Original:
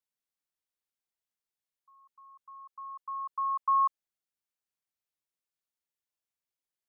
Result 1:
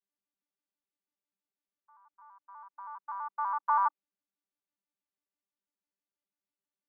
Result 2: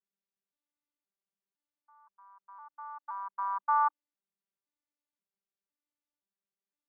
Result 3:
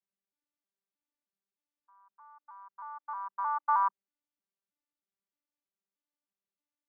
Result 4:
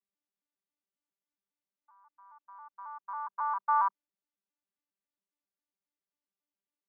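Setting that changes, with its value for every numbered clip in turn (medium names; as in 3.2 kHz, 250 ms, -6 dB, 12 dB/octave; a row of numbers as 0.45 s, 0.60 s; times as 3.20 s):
vocoder on a broken chord, a note every: 82 ms, 517 ms, 313 ms, 136 ms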